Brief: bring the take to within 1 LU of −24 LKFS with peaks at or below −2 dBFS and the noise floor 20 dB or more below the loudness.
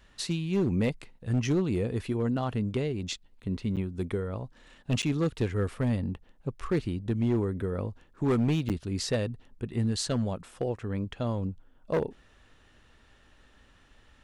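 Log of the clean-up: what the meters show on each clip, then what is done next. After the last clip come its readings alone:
share of clipped samples 1.0%; peaks flattened at −20.5 dBFS; number of dropouts 3; longest dropout 8.0 ms; integrated loudness −30.5 LKFS; sample peak −20.5 dBFS; target loudness −24.0 LKFS
→ clipped peaks rebuilt −20.5 dBFS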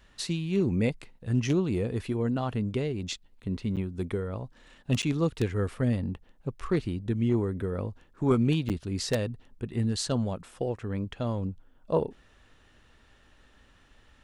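share of clipped samples 0.0%; number of dropouts 3; longest dropout 8.0 ms
→ repair the gap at 0:03.76/0:05.02/0:08.69, 8 ms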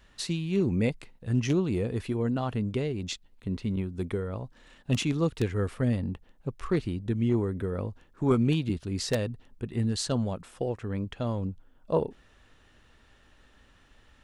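number of dropouts 0; integrated loudness −30.0 LKFS; sample peak −11.5 dBFS; target loudness −24.0 LKFS
→ level +6 dB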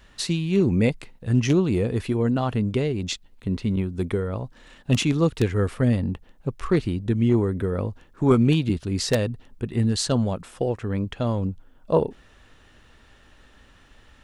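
integrated loudness −24.0 LKFS; sample peak −5.5 dBFS; background noise floor −54 dBFS

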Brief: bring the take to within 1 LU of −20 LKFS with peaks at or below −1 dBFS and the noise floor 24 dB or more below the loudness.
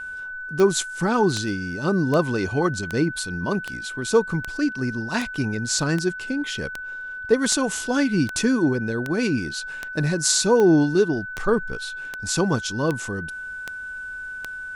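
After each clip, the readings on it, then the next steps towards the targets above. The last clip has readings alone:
number of clicks 19; interfering tone 1,500 Hz; level of the tone −31 dBFS; integrated loudness −23.5 LKFS; sample peak −3.0 dBFS; target loudness −20.0 LKFS
→ click removal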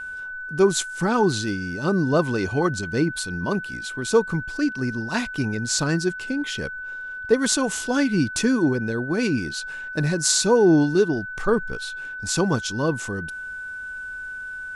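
number of clicks 0; interfering tone 1,500 Hz; level of the tone −31 dBFS
→ notch filter 1,500 Hz, Q 30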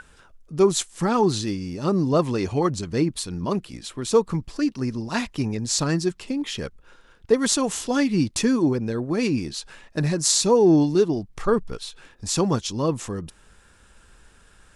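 interfering tone none found; integrated loudness −23.0 LKFS; sample peak −3.0 dBFS; target loudness −20.0 LKFS
→ level +3 dB
brickwall limiter −1 dBFS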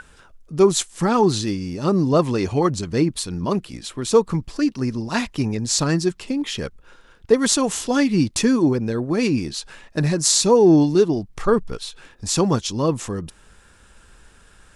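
integrated loudness −20.0 LKFS; sample peak −1.0 dBFS; background noise floor −52 dBFS

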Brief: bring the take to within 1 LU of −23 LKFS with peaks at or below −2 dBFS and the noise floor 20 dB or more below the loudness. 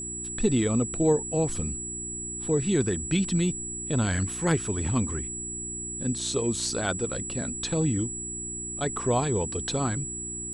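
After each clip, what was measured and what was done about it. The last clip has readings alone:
mains hum 60 Hz; hum harmonics up to 360 Hz; level of the hum −38 dBFS; interfering tone 7,800 Hz; level of the tone −33 dBFS; integrated loudness −27.5 LKFS; sample peak −11.0 dBFS; target loudness −23.0 LKFS
→ hum removal 60 Hz, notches 6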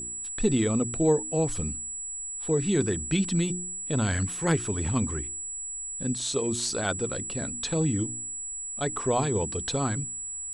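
mains hum none found; interfering tone 7,800 Hz; level of the tone −33 dBFS
→ notch filter 7,800 Hz, Q 30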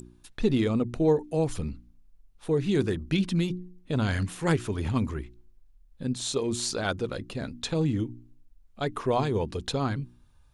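interfering tone none found; integrated loudness −28.5 LKFS; sample peak −11.0 dBFS; target loudness −23.0 LKFS
→ level +5.5 dB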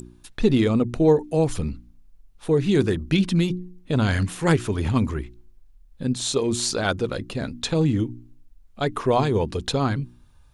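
integrated loudness −23.0 LKFS; sample peak −5.5 dBFS; background noise floor −53 dBFS

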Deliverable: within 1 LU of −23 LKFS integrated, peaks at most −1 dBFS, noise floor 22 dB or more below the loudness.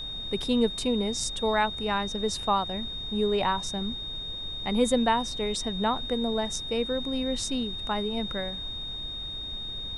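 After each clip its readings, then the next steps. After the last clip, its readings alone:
interfering tone 3,700 Hz; level of the tone −34 dBFS; background noise floor −36 dBFS; target noise floor −51 dBFS; integrated loudness −28.5 LKFS; sample peak −11.0 dBFS; target loudness −23.0 LKFS
→ notch filter 3,700 Hz, Q 30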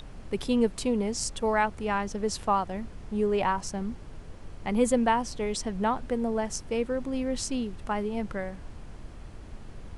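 interfering tone none found; background noise floor −44 dBFS; target noise floor −51 dBFS
→ noise reduction from a noise print 7 dB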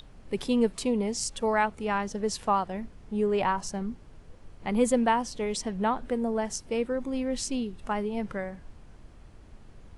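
background noise floor −51 dBFS; integrated loudness −29.0 LKFS; sample peak −12.0 dBFS; target loudness −23.0 LKFS
→ level +6 dB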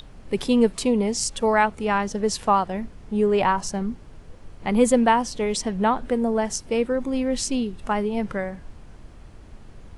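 integrated loudness −23.0 LKFS; sample peak −6.0 dBFS; background noise floor −45 dBFS

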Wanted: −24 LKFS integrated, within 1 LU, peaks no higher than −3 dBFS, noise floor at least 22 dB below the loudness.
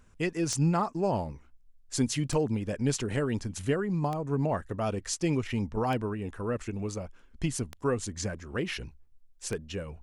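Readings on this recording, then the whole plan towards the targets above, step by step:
number of clicks 6; integrated loudness −31.0 LKFS; sample peak −14.5 dBFS; target loudness −24.0 LKFS
→ click removal
level +7 dB

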